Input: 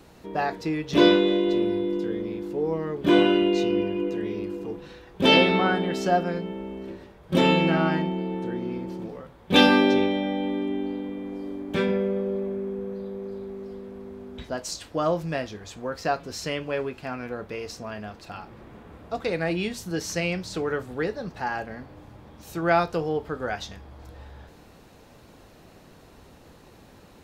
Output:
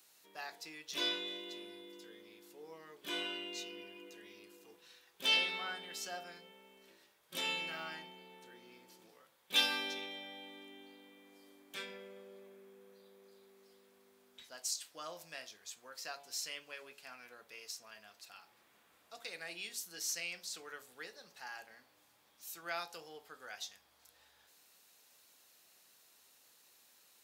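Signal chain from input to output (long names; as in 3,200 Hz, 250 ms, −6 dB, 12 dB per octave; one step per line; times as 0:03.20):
first difference
hum removal 46.99 Hz, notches 23
level −2 dB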